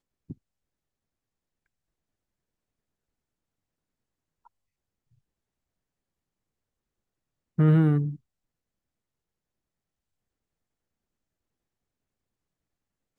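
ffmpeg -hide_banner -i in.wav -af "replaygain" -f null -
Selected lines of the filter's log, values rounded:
track_gain = +33.1 dB
track_peak = 0.206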